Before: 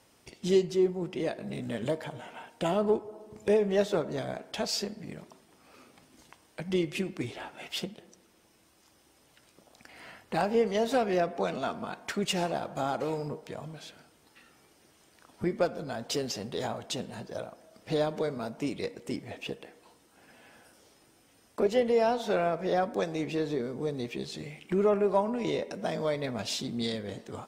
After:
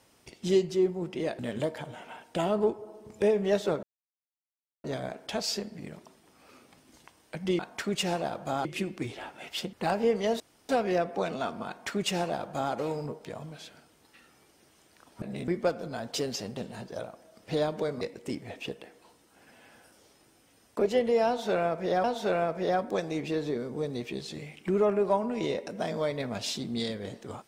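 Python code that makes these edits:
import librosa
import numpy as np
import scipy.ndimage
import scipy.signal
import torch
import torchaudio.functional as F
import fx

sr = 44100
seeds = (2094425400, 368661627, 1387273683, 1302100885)

y = fx.edit(x, sr, fx.move(start_s=1.39, length_s=0.26, to_s=15.44),
    fx.insert_silence(at_s=4.09, length_s=1.01),
    fx.cut(start_s=7.92, length_s=2.32),
    fx.insert_room_tone(at_s=10.91, length_s=0.29),
    fx.duplicate(start_s=11.89, length_s=1.06, to_s=6.84),
    fx.cut(start_s=16.53, length_s=0.43),
    fx.cut(start_s=18.4, length_s=0.42),
    fx.repeat(start_s=22.08, length_s=0.77, count=2), tone=tone)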